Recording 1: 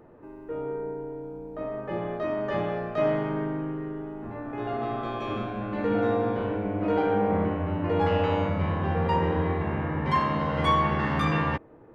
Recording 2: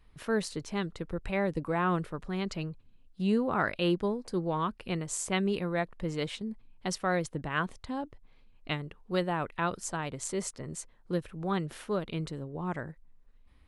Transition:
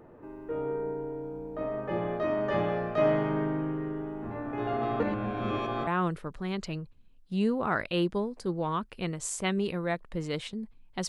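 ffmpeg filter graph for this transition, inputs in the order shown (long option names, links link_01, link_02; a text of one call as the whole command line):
ffmpeg -i cue0.wav -i cue1.wav -filter_complex "[0:a]apad=whole_dur=11.08,atrim=end=11.08,asplit=2[link_01][link_02];[link_01]atrim=end=5.002[link_03];[link_02]atrim=start=4.998:end=5.872,asetpts=PTS-STARTPTS,areverse[link_04];[1:a]atrim=start=1.748:end=6.96[link_05];[link_03][link_04]acrossfade=duration=0.004:curve1=hsin:curve2=hsin[link_06];[link_06][link_05]acrossfade=duration=0.004:curve1=hsin:curve2=hsin" out.wav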